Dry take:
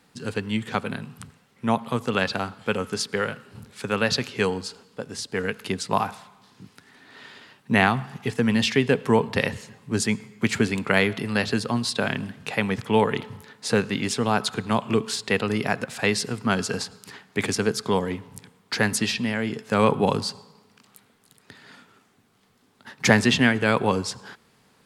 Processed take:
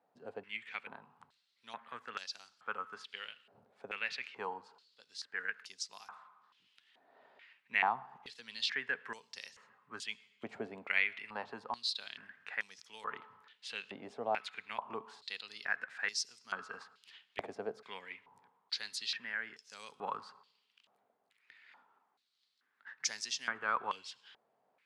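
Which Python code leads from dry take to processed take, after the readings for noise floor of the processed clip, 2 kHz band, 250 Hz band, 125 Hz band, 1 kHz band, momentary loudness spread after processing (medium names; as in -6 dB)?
-78 dBFS, -12.0 dB, -31.0 dB, -36.0 dB, -13.5 dB, 16 LU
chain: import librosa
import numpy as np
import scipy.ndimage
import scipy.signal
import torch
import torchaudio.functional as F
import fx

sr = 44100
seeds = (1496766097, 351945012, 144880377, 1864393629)

y = fx.filter_held_bandpass(x, sr, hz=2.3, low_hz=670.0, high_hz=5600.0)
y = y * librosa.db_to_amplitude(-4.0)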